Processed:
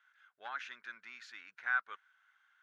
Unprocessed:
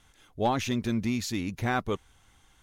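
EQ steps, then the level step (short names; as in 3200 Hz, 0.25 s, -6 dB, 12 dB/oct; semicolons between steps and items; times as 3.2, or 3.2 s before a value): ladder band-pass 1600 Hz, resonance 75%; +1.5 dB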